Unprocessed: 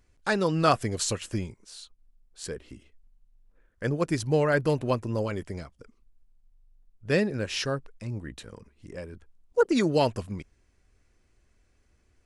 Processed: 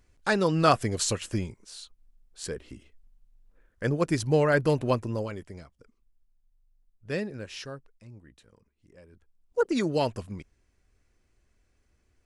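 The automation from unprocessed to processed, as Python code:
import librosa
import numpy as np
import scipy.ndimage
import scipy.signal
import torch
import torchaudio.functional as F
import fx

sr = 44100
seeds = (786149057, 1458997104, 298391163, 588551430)

y = fx.gain(x, sr, db=fx.line((4.99, 1.0), (5.44, -7.0), (7.25, -7.0), (8.27, -15.0), (8.97, -15.0), (9.6, -3.0)))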